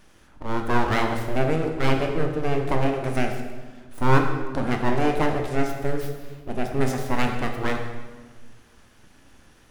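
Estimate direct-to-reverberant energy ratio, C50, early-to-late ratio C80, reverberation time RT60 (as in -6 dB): 3.0 dB, 5.0 dB, 7.0 dB, 1.4 s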